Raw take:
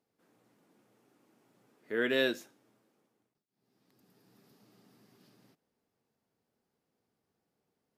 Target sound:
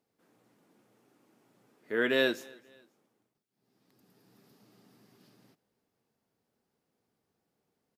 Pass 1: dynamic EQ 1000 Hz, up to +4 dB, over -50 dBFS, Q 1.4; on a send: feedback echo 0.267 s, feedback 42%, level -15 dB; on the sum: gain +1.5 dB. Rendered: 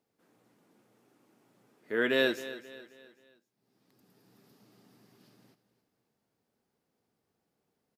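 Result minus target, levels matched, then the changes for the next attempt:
echo-to-direct +10.5 dB
change: feedback echo 0.267 s, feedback 42%, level -25.5 dB

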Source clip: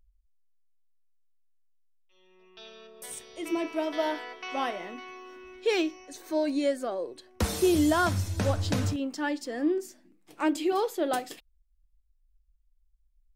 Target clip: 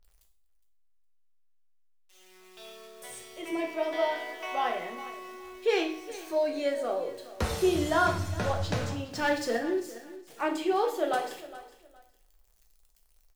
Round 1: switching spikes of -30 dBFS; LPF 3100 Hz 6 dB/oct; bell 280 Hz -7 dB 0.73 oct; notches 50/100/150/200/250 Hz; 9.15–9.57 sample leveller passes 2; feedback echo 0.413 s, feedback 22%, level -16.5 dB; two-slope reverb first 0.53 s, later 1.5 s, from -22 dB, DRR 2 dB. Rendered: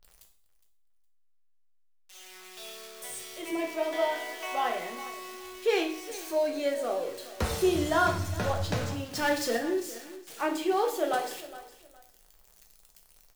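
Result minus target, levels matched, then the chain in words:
switching spikes: distortion +10 dB
switching spikes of -40.5 dBFS; LPF 3100 Hz 6 dB/oct; bell 280 Hz -7 dB 0.73 oct; notches 50/100/150/200/250 Hz; 9.15–9.57 sample leveller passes 2; feedback echo 0.413 s, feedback 22%, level -16.5 dB; two-slope reverb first 0.53 s, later 1.5 s, from -22 dB, DRR 2 dB

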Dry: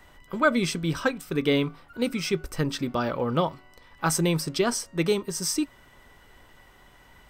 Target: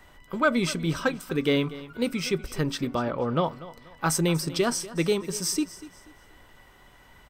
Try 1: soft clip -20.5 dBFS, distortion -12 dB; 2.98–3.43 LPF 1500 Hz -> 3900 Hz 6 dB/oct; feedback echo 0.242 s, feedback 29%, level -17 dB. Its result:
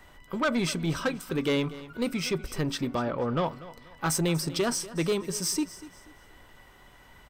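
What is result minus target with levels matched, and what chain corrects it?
soft clip: distortion +13 dB
soft clip -10 dBFS, distortion -26 dB; 2.98–3.43 LPF 1500 Hz -> 3900 Hz 6 dB/oct; feedback echo 0.242 s, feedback 29%, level -17 dB

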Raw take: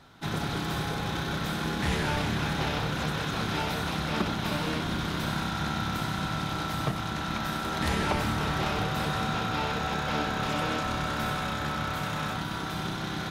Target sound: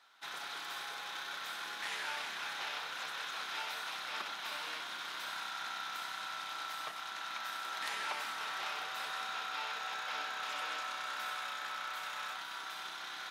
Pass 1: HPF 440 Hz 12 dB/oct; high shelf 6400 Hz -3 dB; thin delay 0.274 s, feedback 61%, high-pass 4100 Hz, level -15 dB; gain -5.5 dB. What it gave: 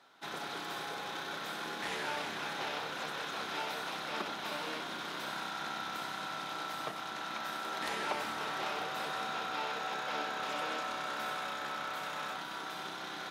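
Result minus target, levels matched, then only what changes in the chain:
500 Hz band +9.0 dB
change: HPF 1100 Hz 12 dB/oct

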